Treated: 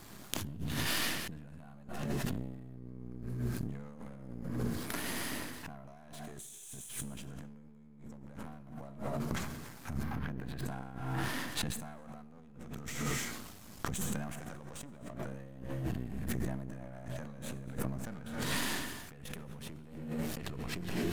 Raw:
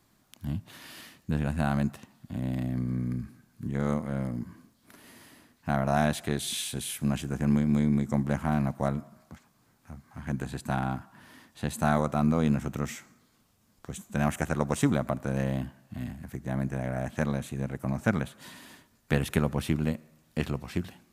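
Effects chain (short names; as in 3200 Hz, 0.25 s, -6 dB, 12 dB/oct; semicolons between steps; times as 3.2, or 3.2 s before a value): half-wave gain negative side -12 dB; 6.26–6.89 resonant high shelf 5600 Hz +6.5 dB, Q 3; non-linear reverb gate 0.32 s flat, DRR 9 dB; negative-ratio compressor -49 dBFS, ratio -1; 10.03–10.65 bell 7800 Hz -13.5 dB 0.98 oct; sustainer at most 43 dB/s; gain +5 dB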